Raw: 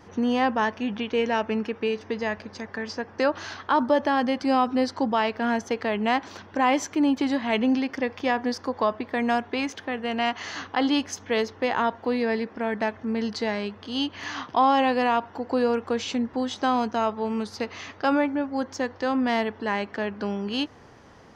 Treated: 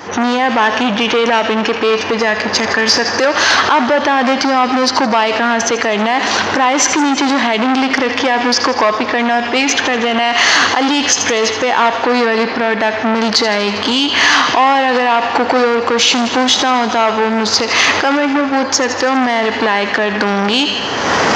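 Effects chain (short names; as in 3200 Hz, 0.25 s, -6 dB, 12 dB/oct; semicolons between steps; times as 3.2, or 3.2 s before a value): recorder AGC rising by 40 dB/s; in parallel at -10 dB: wavefolder -20 dBFS; on the sum: thin delay 80 ms, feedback 69%, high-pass 1800 Hz, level -11.5 dB; on a send at -17.5 dB: reverb RT60 2.1 s, pre-delay 15 ms; on the sum: downsampling 16000 Hz; HPF 550 Hz 6 dB/oct; maximiser +20.5 dB; core saturation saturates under 1000 Hz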